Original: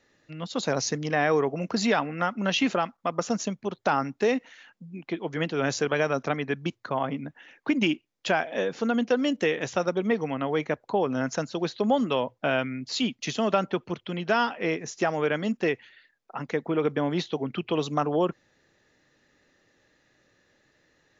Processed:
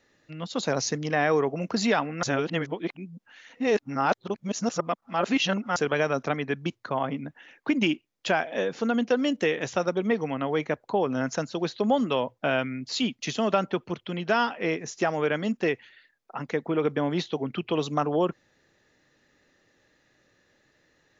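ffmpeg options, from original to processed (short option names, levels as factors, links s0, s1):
-filter_complex "[0:a]asplit=3[s0][s1][s2];[s0]atrim=end=2.232[s3];[s1]atrim=start=2.228:end=5.762,asetpts=PTS-STARTPTS,areverse[s4];[s2]atrim=start=5.758[s5];[s3][s4]acrossfade=d=0.004:c1=hsin:c2=hsin[s6];[s6][s5]acrossfade=d=0.004:c1=hsin:c2=hsin"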